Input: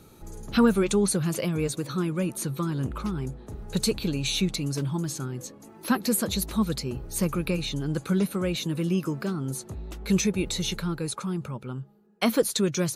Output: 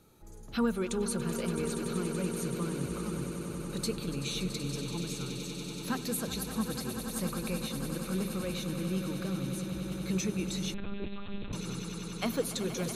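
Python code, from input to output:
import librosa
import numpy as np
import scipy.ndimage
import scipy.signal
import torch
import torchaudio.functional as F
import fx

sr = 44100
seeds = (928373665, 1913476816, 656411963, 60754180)

y = fx.hum_notches(x, sr, base_hz=50, count=8)
y = fx.echo_swell(y, sr, ms=95, loudest=8, wet_db=-12.5)
y = fx.lpc_monotone(y, sr, seeds[0], pitch_hz=200.0, order=8, at=(10.74, 11.53))
y = F.gain(torch.from_numpy(y), -9.0).numpy()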